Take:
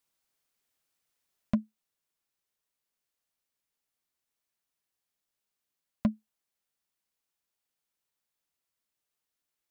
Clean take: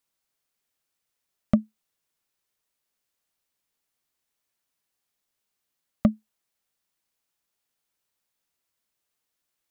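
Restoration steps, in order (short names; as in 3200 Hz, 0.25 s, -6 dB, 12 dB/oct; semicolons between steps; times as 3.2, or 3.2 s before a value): clip repair -18.5 dBFS; gain 0 dB, from 1.5 s +5.5 dB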